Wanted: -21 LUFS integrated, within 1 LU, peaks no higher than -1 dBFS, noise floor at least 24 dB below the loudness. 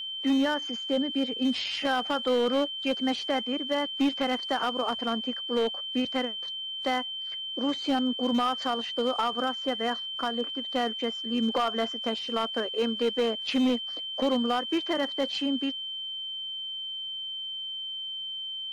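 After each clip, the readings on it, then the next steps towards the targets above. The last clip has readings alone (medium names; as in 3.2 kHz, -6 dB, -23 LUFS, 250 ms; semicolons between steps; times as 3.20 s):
clipped samples 1.6%; clipping level -20.0 dBFS; steady tone 3.1 kHz; tone level -33 dBFS; loudness -28.5 LUFS; peak level -20.0 dBFS; loudness target -21.0 LUFS
-> clip repair -20 dBFS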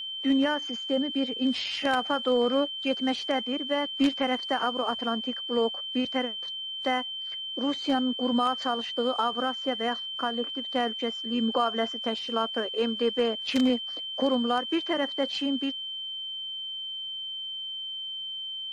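clipped samples 0.0%; steady tone 3.1 kHz; tone level -33 dBFS
-> band-stop 3.1 kHz, Q 30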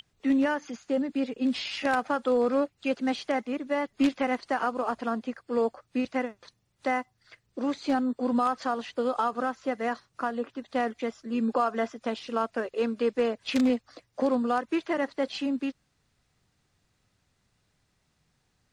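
steady tone not found; loudness -29.0 LUFS; peak level -11.0 dBFS; loudness target -21.0 LUFS
-> trim +8 dB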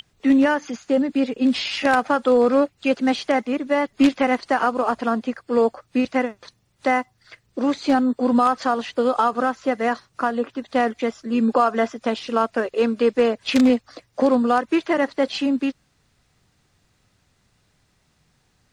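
loudness -21.0 LUFS; peak level -3.0 dBFS; noise floor -65 dBFS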